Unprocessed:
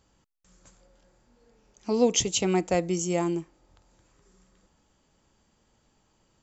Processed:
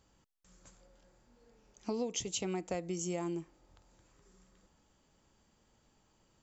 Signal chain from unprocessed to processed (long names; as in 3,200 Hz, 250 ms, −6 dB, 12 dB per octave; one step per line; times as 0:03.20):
downward compressor 8 to 1, threshold −30 dBFS, peak gain reduction 14 dB
level −3 dB